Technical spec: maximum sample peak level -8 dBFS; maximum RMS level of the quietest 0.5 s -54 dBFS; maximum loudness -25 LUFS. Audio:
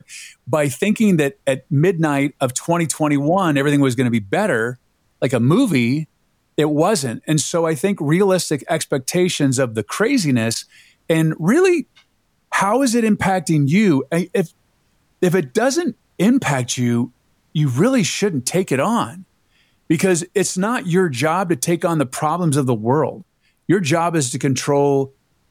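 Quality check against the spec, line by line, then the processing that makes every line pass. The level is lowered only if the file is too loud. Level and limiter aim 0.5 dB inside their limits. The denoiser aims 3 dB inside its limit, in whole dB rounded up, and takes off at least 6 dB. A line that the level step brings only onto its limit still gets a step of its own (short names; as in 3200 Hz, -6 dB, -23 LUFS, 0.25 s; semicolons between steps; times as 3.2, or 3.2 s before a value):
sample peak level -5.0 dBFS: fail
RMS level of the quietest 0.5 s -64 dBFS: OK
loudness -18.0 LUFS: fail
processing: gain -7.5 dB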